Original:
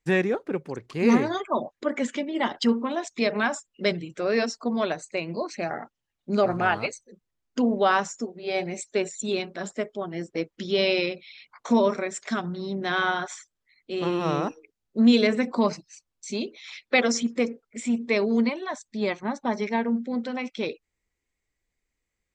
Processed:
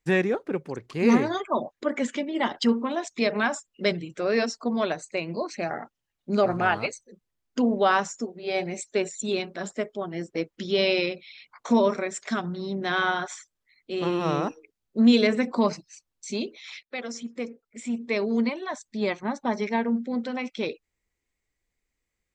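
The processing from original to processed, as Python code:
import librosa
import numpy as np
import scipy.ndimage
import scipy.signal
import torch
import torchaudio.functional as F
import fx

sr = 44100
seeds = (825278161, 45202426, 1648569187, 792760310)

y = fx.edit(x, sr, fx.fade_in_from(start_s=16.83, length_s=2.0, floor_db=-16.5), tone=tone)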